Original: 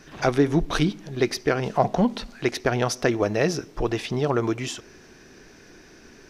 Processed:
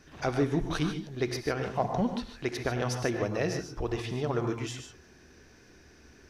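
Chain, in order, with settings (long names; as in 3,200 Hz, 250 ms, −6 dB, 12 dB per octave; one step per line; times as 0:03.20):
parametric band 73 Hz +15 dB 0.45 octaves
reverb whose tail is shaped and stops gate 170 ms rising, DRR 5.5 dB
level −8.5 dB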